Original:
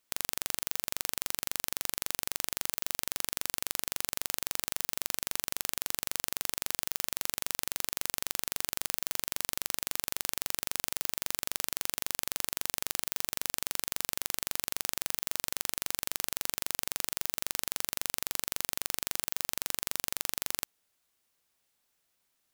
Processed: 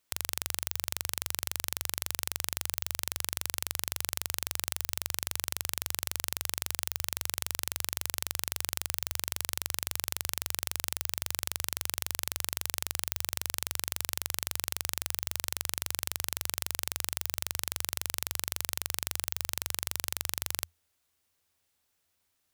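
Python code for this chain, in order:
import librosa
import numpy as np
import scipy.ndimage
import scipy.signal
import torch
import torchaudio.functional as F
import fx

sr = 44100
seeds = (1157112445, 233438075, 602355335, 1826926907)

y = fx.peak_eq(x, sr, hz=83.0, db=15.0, octaves=0.42)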